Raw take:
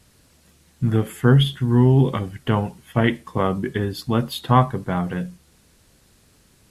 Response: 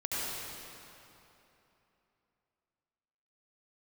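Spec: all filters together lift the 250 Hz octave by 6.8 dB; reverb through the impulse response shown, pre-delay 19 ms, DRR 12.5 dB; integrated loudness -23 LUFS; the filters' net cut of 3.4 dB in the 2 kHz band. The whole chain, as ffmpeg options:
-filter_complex "[0:a]equalizer=f=250:t=o:g=8,equalizer=f=2000:t=o:g=-4.5,asplit=2[s0][s1];[1:a]atrim=start_sample=2205,adelay=19[s2];[s1][s2]afir=irnorm=-1:irlink=0,volume=0.112[s3];[s0][s3]amix=inputs=2:normalize=0,volume=0.501"

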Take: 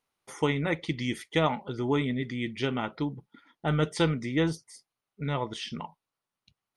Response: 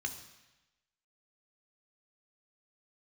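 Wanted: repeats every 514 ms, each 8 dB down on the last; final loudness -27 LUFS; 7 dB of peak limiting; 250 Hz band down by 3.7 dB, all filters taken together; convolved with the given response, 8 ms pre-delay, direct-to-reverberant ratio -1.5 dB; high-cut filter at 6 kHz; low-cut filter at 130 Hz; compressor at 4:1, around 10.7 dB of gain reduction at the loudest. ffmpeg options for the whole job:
-filter_complex "[0:a]highpass=130,lowpass=6000,equalizer=f=250:t=o:g=-4.5,acompressor=threshold=0.0178:ratio=4,alimiter=level_in=1.68:limit=0.0631:level=0:latency=1,volume=0.596,aecho=1:1:514|1028|1542|2056|2570:0.398|0.159|0.0637|0.0255|0.0102,asplit=2[s0][s1];[1:a]atrim=start_sample=2205,adelay=8[s2];[s1][s2]afir=irnorm=-1:irlink=0,volume=1.06[s3];[s0][s3]amix=inputs=2:normalize=0,volume=3.55"

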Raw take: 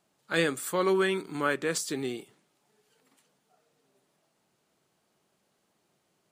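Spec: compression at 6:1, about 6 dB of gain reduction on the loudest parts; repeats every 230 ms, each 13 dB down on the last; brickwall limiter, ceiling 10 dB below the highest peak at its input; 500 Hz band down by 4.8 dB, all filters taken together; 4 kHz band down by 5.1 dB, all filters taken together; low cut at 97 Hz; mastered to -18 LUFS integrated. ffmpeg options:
-af "highpass=97,equalizer=f=500:t=o:g=-6.5,equalizer=f=4000:t=o:g=-6.5,acompressor=threshold=0.0316:ratio=6,alimiter=level_in=1.58:limit=0.0631:level=0:latency=1,volume=0.631,aecho=1:1:230|460|690:0.224|0.0493|0.0108,volume=10.6"

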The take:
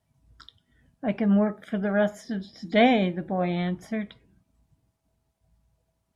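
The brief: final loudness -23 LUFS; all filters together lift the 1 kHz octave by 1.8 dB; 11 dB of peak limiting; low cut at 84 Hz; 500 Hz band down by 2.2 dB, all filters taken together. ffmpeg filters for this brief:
-af "highpass=84,equalizer=f=500:t=o:g=-6,equalizer=f=1000:t=o:g=7,volume=2.24,alimiter=limit=0.237:level=0:latency=1"

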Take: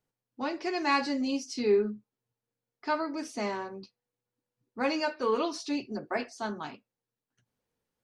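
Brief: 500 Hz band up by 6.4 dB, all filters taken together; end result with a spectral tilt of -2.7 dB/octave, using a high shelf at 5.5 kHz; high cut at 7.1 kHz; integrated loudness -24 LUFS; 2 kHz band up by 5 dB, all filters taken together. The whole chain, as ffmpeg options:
-af "lowpass=7100,equalizer=f=500:t=o:g=8,equalizer=f=2000:t=o:g=7,highshelf=f=5500:g=-9,volume=1.33"

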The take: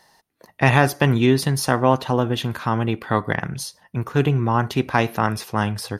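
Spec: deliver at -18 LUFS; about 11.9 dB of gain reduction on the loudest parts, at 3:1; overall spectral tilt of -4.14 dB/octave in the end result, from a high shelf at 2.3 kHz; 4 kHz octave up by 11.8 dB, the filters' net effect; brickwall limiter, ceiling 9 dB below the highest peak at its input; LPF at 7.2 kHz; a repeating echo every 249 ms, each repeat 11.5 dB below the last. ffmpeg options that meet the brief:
-af "lowpass=7200,highshelf=f=2300:g=7.5,equalizer=f=4000:t=o:g=8.5,acompressor=threshold=0.0501:ratio=3,alimiter=limit=0.158:level=0:latency=1,aecho=1:1:249|498|747:0.266|0.0718|0.0194,volume=3.55"

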